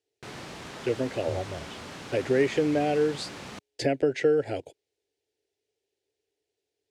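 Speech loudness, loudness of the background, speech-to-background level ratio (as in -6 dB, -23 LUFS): -27.5 LUFS, -41.0 LUFS, 13.5 dB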